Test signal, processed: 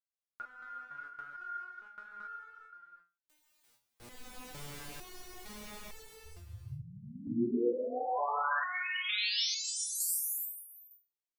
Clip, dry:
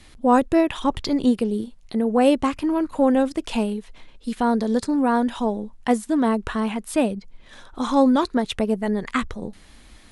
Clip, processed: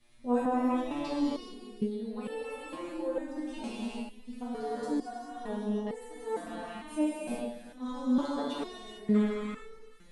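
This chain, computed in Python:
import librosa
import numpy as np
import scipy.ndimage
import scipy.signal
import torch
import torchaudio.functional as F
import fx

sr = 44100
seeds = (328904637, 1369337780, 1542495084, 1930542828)

y = x + 10.0 ** (-14.5 / 20.0) * np.pad(x, (int(351 * sr / 1000.0), 0))[:len(x)]
y = fx.rev_gated(y, sr, seeds[0], gate_ms=470, shape='flat', drr_db=-7.5)
y = fx.resonator_held(y, sr, hz=2.2, low_hz=120.0, high_hz=440.0)
y = F.gain(torch.from_numpy(y), -8.0).numpy()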